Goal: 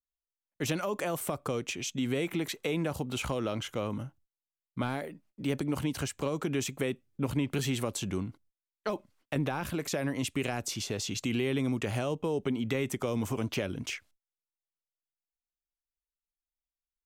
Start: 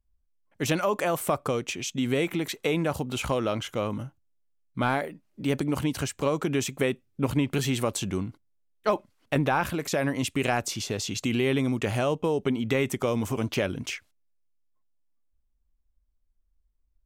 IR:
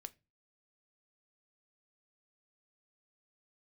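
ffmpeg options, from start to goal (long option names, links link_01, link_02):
-filter_complex "[0:a]agate=range=-27dB:threshold=-57dB:ratio=16:detection=peak,acrossover=split=440|3000[link_01][link_02][link_03];[link_02]acompressor=threshold=-29dB:ratio=6[link_04];[link_01][link_04][link_03]amix=inputs=3:normalize=0,asplit=2[link_05][link_06];[link_06]alimiter=limit=-20dB:level=0:latency=1:release=151,volume=-2dB[link_07];[link_05][link_07]amix=inputs=2:normalize=0,volume=-8dB"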